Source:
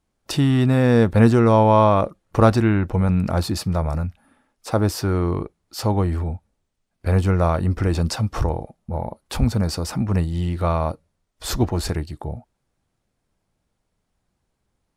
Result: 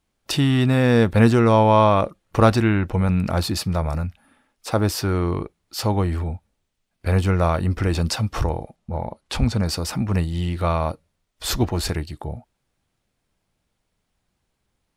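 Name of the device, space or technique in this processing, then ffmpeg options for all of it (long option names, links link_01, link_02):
presence and air boost: -filter_complex "[0:a]equalizer=frequency=2900:width_type=o:width=1.7:gain=5.5,highshelf=frequency=11000:gain=6,asettb=1/sr,asplit=3[link_01][link_02][link_03];[link_01]atrim=end=8.764[link_04];[link_02]atrim=start=8.76:end=9.66,asetpts=PTS-STARTPTS,afade=type=in:duration=0.004:curve=qsin,afade=type=out:start_time=0.896:duration=0.004:curve=qsin,lowpass=8400[link_05];[link_03]atrim=start=9.656[link_06];[link_04][link_05]acrossfade=duration=0.004:curve1=hsin:curve2=qsin[link_07];[link_07][link_06]acrossfade=duration=0.004:curve1=qsin:curve2=hsin,volume=-1dB"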